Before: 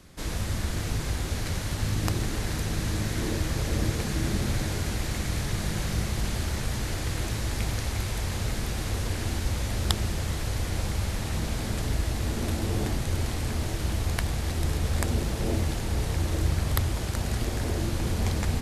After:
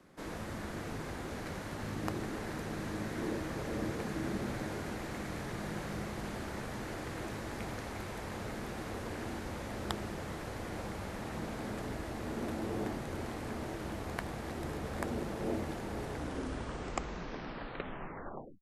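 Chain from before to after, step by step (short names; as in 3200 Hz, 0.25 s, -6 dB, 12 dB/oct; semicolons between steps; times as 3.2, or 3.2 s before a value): tape stop at the end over 2.68 s; three-band isolator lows -16 dB, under 170 Hz, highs -12 dB, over 2000 Hz; gain -3.5 dB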